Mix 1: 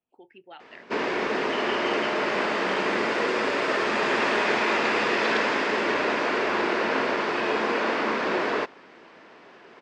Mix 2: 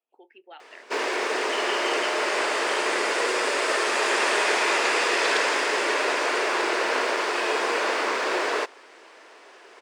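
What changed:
background: remove distance through air 160 m; master: add high-pass 350 Hz 24 dB/octave

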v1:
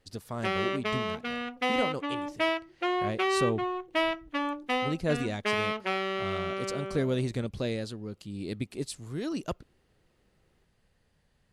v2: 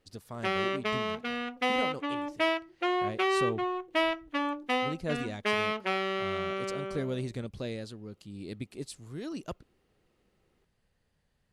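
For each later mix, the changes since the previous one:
speech -5.0 dB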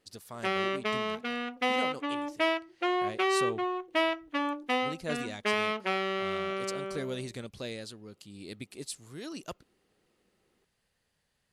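speech: add tilt EQ +2 dB/octave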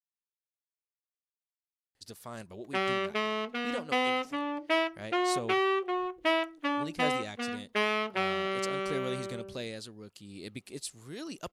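speech: entry +1.95 s; background: entry +2.30 s

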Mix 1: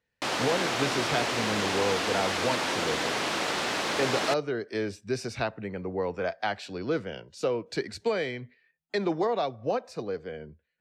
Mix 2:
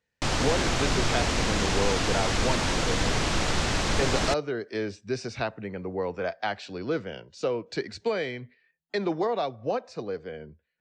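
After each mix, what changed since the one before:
background: remove band-pass 310–5100 Hz; master: add low-pass 7.2 kHz 24 dB/octave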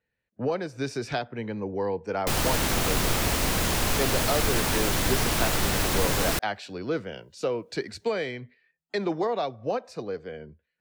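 background: entry +2.05 s; master: remove low-pass 7.2 kHz 24 dB/octave

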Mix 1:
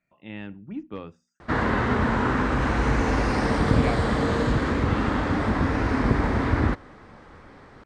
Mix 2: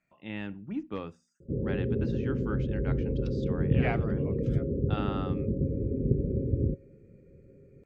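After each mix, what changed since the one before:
background: add rippled Chebyshev low-pass 560 Hz, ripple 9 dB; master: remove Bessel low-pass 6.4 kHz, order 8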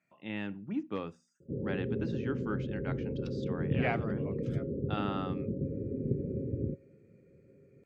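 background -4.0 dB; master: add high-pass 110 Hz 12 dB/octave

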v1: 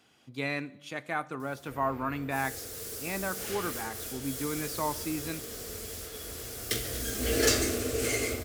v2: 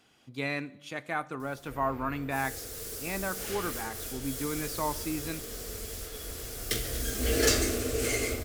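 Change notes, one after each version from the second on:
master: remove high-pass 65 Hz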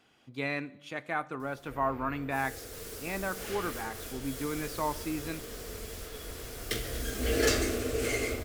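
second sound +3.5 dB; master: add tone controls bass -2 dB, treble -6 dB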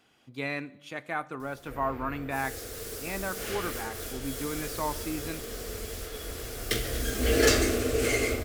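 speech: add treble shelf 8.7 kHz +5.5 dB; first sound +4.5 dB

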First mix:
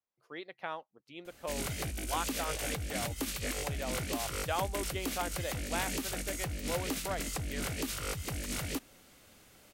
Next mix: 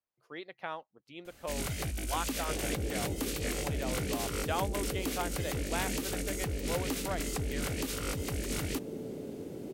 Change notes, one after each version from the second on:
second sound: unmuted; master: add bass shelf 160 Hz +3.5 dB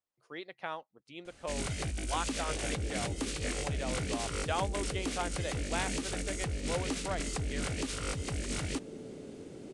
speech: add treble shelf 8.6 kHz +11.5 dB; second sound -5.0 dB; master: add steep low-pass 9.8 kHz 48 dB/octave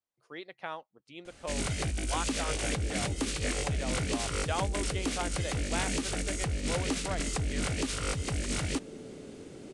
first sound +3.5 dB

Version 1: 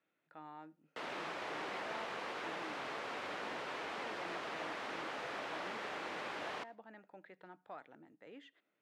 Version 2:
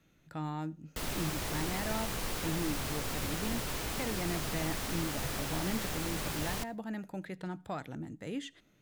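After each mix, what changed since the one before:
speech +9.0 dB; master: remove band-pass 450–2400 Hz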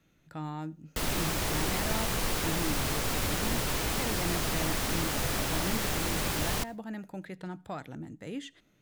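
background +6.0 dB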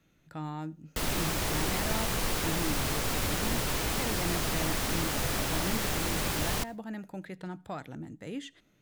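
no change

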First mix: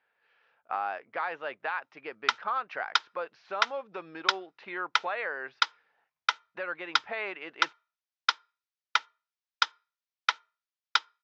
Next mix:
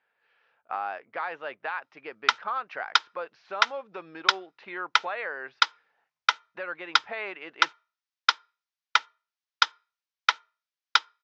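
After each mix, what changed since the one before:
background +4.0 dB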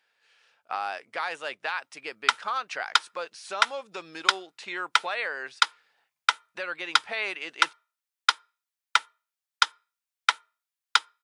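speech: remove low-pass 1.8 kHz 12 dB/octave; master: remove steep low-pass 6.2 kHz 48 dB/octave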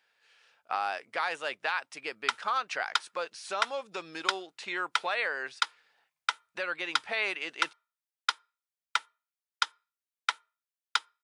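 background -7.0 dB

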